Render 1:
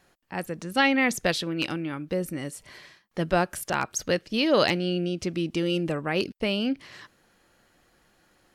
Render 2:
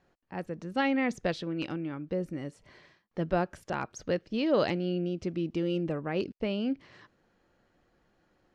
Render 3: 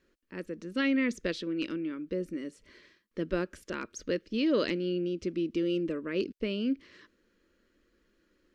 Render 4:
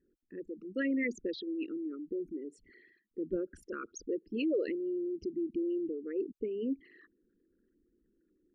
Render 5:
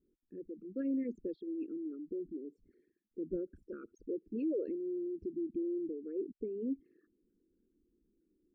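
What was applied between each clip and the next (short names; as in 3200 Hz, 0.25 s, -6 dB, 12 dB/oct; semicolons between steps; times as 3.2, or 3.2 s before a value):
EQ curve 460 Hz 0 dB, 6200 Hz -11 dB, 12000 Hz -26 dB; gain -3.5 dB
fixed phaser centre 320 Hz, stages 4; gain +2 dB
formant sharpening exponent 3; gain -3.5 dB
running mean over 45 samples; gain -1 dB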